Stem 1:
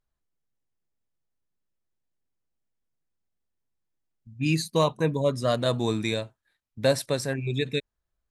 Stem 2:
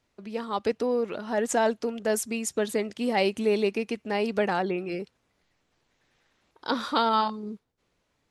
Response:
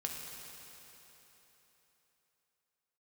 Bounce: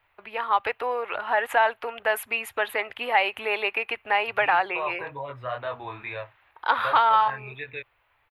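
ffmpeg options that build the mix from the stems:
-filter_complex "[0:a]equalizer=f=10000:w=0.49:g=-12.5,alimiter=limit=0.112:level=0:latency=1:release=20,flanger=delay=20:depth=4.2:speed=2.1,volume=0.794[s0];[1:a]highshelf=f=6300:g=10.5,aexciter=amount=6.2:drive=5:freq=11000,volume=1.12[s1];[s0][s1]amix=inputs=2:normalize=0,firequalizer=gain_entry='entry(120,0);entry(170,-22);entry(310,-9);entry(820,10);entry(2600,9);entry(5600,-26);entry(11000,-19)':delay=0.05:min_phase=1,acrossover=split=410|920[s2][s3][s4];[s2]acompressor=threshold=0.00708:ratio=4[s5];[s3]acompressor=threshold=0.0631:ratio=4[s6];[s4]acompressor=threshold=0.1:ratio=4[s7];[s5][s6][s7]amix=inputs=3:normalize=0"

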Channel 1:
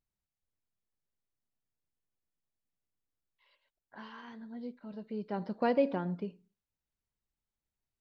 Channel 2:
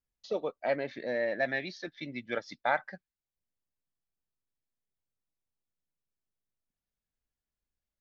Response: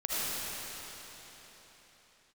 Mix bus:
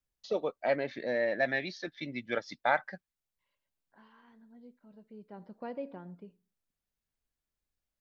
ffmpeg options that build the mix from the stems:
-filter_complex "[0:a]lowpass=f=2800:p=1,volume=0.266[s0];[1:a]volume=1.12[s1];[s0][s1]amix=inputs=2:normalize=0"

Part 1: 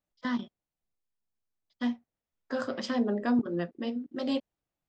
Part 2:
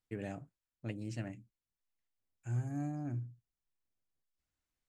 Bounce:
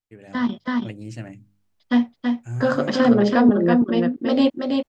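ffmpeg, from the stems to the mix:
-filter_complex "[0:a]highshelf=f=5000:g=-10,adelay=100,volume=1.33,asplit=2[s0][s1];[s1]volume=0.596[s2];[1:a]bandreject=f=50.09:t=h:w=4,bandreject=f=100.18:t=h:w=4,bandreject=f=150.27:t=h:w=4,bandreject=f=200.36:t=h:w=4,bandreject=f=250.45:t=h:w=4,bandreject=f=300.54:t=h:w=4,volume=0.668[s3];[s2]aecho=0:1:328:1[s4];[s0][s3][s4]amix=inputs=3:normalize=0,dynaudnorm=f=290:g=3:m=3.16"

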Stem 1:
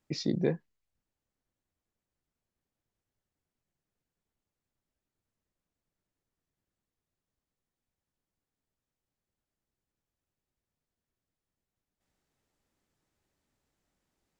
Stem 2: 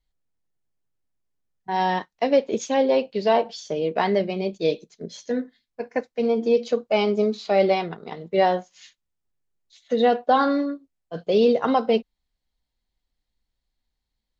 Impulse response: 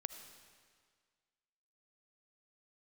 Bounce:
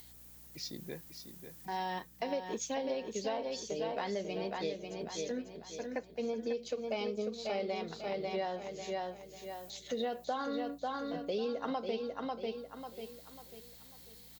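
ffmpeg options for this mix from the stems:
-filter_complex "[0:a]tiltshelf=f=970:g=-4.5,adelay=450,volume=0.531,asplit=2[s0][s1];[s1]volume=0.168[s2];[1:a]highpass=130,acompressor=mode=upward:threshold=0.0398:ratio=2.5,aeval=exprs='val(0)+0.00316*(sin(2*PI*60*n/s)+sin(2*PI*2*60*n/s)/2+sin(2*PI*3*60*n/s)/3+sin(2*PI*4*60*n/s)/4+sin(2*PI*5*60*n/s)/5)':c=same,volume=0.282,asplit=3[s3][s4][s5];[s4]volume=0.501[s6];[s5]apad=whole_len=654557[s7];[s0][s7]sidechaingate=range=0.447:threshold=0.002:ratio=16:detection=peak[s8];[s2][s6]amix=inputs=2:normalize=0,aecho=0:1:544|1088|1632|2176|2720:1|0.37|0.137|0.0507|0.0187[s9];[s8][s3][s9]amix=inputs=3:normalize=0,aemphasis=mode=production:type=50fm,acompressor=threshold=0.0251:ratio=6"

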